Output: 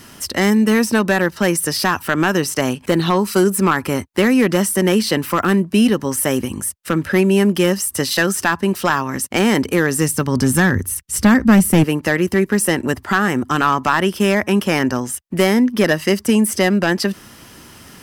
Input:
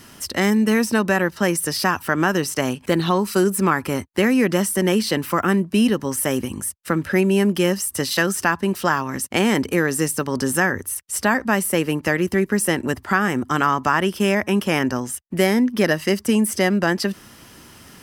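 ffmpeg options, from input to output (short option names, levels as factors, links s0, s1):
-filter_complex "[0:a]asettb=1/sr,asplit=3[s0][s1][s2];[s0]atrim=end=9.784[s3];[s1]atrim=start=9.78:end=11.84,asetpts=PTS-STARTPTS,afade=t=in:d=0.004:c=qsin,afade=t=out:st=2.056:d=0.004:c=qsin,asubboost=boost=10.5:cutoff=250[s4];[s2]atrim=start=11.836[s5];[s3][s4]acrossfade=d=0.004:c1=hsin:c2=qsin[s6];[s6][s5]acrossfade=d=0.004:c1=qsin:c2=hsin,aeval=exprs='clip(val(0),-1,0.299)':c=same,volume=1.5"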